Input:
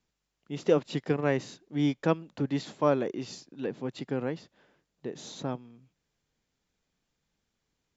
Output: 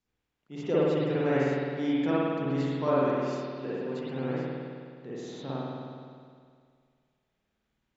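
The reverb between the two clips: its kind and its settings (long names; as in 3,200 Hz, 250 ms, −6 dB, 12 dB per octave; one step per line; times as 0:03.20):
spring reverb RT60 2.1 s, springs 52 ms, chirp 70 ms, DRR −9 dB
level −8 dB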